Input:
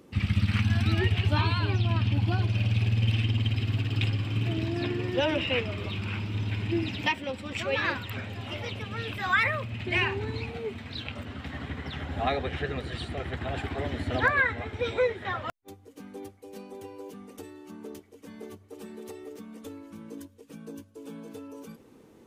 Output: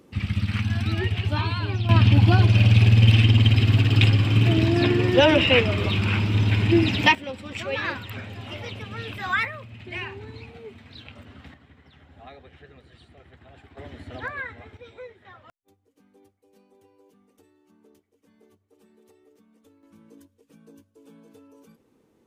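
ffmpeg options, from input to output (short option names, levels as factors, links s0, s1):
-af "asetnsamples=n=441:p=0,asendcmd='1.89 volume volume 10dB;7.15 volume volume 0dB;9.45 volume volume -7dB;11.54 volume volume -17.5dB;13.77 volume volume -9dB;14.77 volume volume -16dB;19.83 volume volume -9dB',volume=1"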